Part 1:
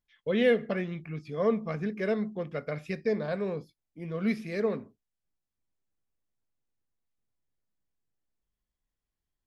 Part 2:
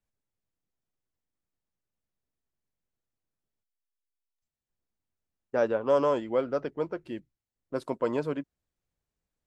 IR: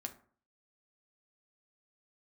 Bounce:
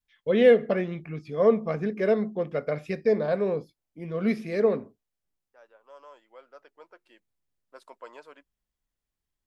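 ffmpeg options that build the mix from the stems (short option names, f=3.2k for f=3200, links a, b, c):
-filter_complex "[0:a]adynamicequalizer=threshold=0.0112:dfrequency=540:dqfactor=0.71:tfrequency=540:tqfactor=0.71:attack=5:release=100:ratio=0.375:range=3.5:mode=boostabove:tftype=bell,volume=0.5dB,asplit=2[a][b];[1:a]highpass=800,volume=-8.5dB[c];[b]apad=whole_len=417426[d];[c][d]sidechaincompress=threshold=-42dB:ratio=8:attack=5.9:release=1430[e];[a][e]amix=inputs=2:normalize=0"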